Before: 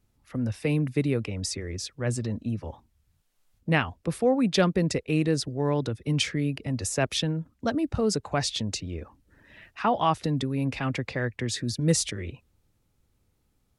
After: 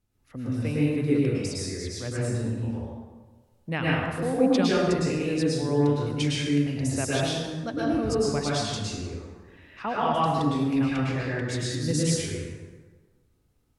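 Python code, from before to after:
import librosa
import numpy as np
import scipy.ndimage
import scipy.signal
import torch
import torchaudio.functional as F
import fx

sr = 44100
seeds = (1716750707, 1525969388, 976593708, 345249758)

y = fx.rev_plate(x, sr, seeds[0], rt60_s=1.4, hf_ratio=0.6, predelay_ms=95, drr_db=-6.5)
y = F.gain(torch.from_numpy(y), -7.0).numpy()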